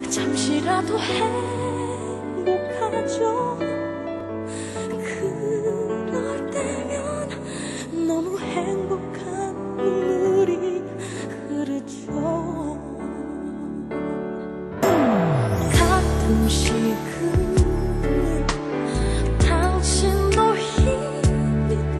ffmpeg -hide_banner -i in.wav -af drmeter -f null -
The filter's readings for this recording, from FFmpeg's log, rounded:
Channel 1: DR: 10.0
Overall DR: 10.0